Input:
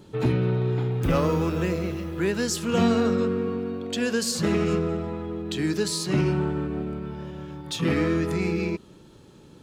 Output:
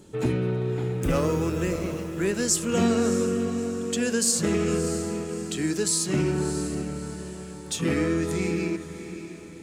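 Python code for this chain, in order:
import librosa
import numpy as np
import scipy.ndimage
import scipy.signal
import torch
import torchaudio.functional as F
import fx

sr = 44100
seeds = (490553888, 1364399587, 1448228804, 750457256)

y = fx.graphic_eq_10(x, sr, hz=(125, 1000, 4000, 8000), db=(-4, -4, -5, 10))
y = fx.echo_diffused(y, sr, ms=632, feedback_pct=42, wet_db=-11.5)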